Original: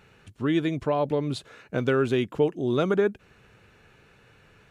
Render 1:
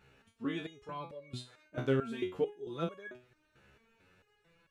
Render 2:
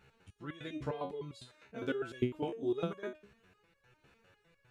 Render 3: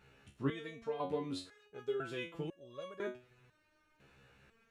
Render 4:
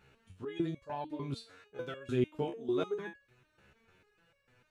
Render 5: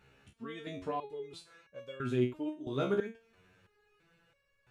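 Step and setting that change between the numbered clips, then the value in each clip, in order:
resonator arpeggio, rate: 4.5 Hz, 9.9 Hz, 2 Hz, 6.7 Hz, 3 Hz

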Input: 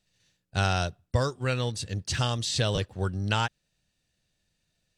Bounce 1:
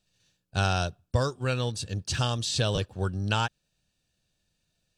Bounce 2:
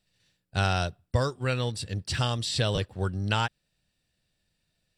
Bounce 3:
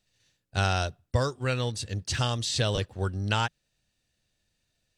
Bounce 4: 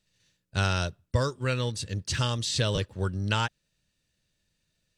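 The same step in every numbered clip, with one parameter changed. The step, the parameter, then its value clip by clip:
band-stop, frequency: 2 kHz, 6.4 kHz, 170 Hz, 740 Hz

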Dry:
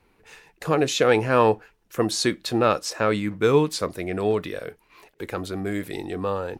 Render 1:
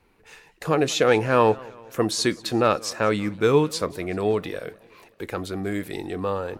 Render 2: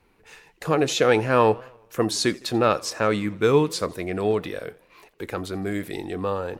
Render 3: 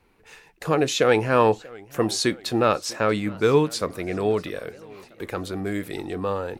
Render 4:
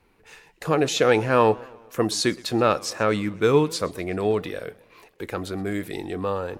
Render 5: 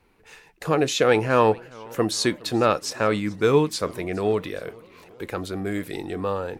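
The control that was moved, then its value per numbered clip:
modulated delay, time: 190 ms, 84 ms, 641 ms, 125 ms, 422 ms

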